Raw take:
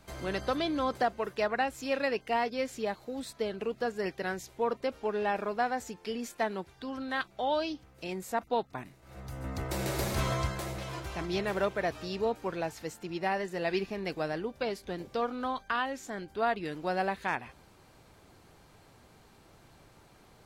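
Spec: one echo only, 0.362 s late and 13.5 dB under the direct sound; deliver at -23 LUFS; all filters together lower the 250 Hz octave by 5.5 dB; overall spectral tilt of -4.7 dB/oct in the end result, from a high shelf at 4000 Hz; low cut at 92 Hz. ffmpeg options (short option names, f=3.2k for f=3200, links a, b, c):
-af "highpass=92,equalizer=f=250:t=o:g=-7.5,highshelf=f=4k:g=-5,aecho=1:1:362:0.211,volume=12dB"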